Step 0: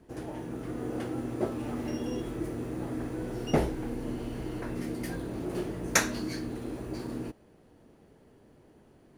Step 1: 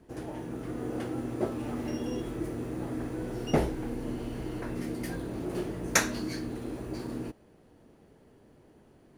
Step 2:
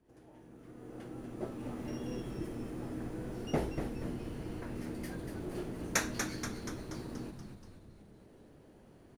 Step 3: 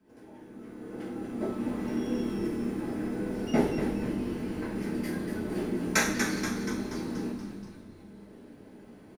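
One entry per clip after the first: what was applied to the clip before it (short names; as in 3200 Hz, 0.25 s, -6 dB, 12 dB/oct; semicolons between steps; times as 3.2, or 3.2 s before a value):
nothing audible
opening faded in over 1.95 s; on a send: frequency-shifting echo 0.239 s, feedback 57%, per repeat -110 Hz, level -6 dB; on the sum: upward compressor, threshold -43 dBFS; gain -7 dB
echo 0.413 s -22 dB; reverb RT60 0.65 s, pre-delay 3 ms, DRR -4 dB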